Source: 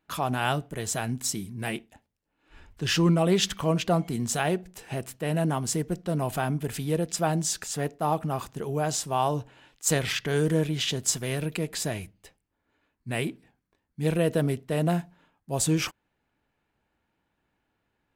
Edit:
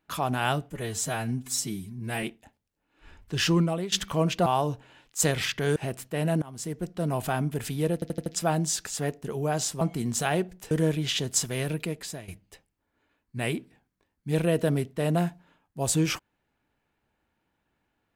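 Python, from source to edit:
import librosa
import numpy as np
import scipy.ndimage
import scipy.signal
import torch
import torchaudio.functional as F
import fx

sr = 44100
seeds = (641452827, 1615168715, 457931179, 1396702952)

y = fx.edit(x, sr, fx.stretch_span(start_s=0.7, length_s=1.02, factor=1.5),
    fx.fade_out_to(start_s=3.0, length_s=0.41, floor_db=-18.0),
    fx.swap(start_s=3.95, length_s=0.9, other_s=9.13, other_length_s=1.3),
    fx.fade_in_from(start_s=5.51, length_s=0.85, curve='qsin', floor_db=-22.0),
    fx.stutter(start_s=7.03, slice_s=0.08, count=5),
    fx.cut(start_s=7.99, length_s=0.55),
    fx.fade_out_to(start_s=11.47, length_s=0.53, floor_db=-15.0), tone=tone)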